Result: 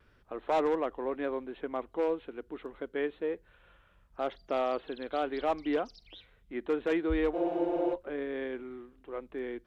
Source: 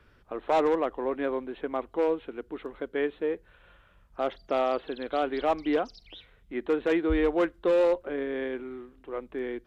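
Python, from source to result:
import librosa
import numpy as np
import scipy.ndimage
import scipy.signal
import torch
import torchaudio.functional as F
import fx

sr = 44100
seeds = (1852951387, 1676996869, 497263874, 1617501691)

y = fx.vibrato(x, sr, rate_hz=1.0, depth_cents=24.0)
y = fx.spec_freeze(y, sr, seeds[0], at_s=7.36, hold_s=0.56)
y = y * librosa.db_to_amplitude(-4.0)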